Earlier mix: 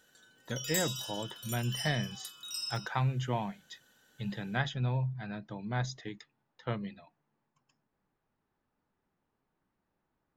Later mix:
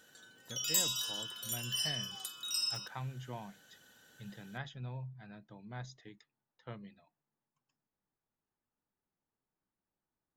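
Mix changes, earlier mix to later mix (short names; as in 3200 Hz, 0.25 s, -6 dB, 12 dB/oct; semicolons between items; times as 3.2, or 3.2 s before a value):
speech -11.5 dB; background +3.5 dB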